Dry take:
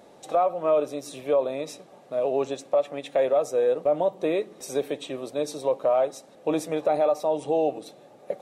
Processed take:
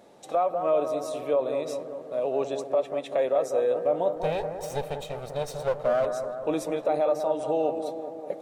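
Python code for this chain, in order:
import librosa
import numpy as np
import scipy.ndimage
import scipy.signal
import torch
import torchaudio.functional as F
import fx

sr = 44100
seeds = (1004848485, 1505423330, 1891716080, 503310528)

y = fx.lower_of_two(x, sr, delay_ms=1.6, at=(4.16, 6.06))
y = fx.echo_bbd(y, sr, ms=194, stages=2048, feedback_pct=65, wet_db=-7.5)
y = y * 10.0 ** (-2.5 / 20.0)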